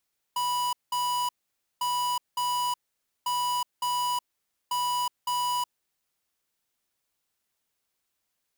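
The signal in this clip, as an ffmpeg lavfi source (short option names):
-f lavfi -i "aevalsrc='0.0422*(2*lt(mod(983*t,1),0.5)-1)*clip(min(mod(mod(t,1.45),0.56),0.37-mod(mod(t,1.45),0.56))/0.005,0,1)*lt(mod(t,1.45),1.12)':d=5.8:s=44100"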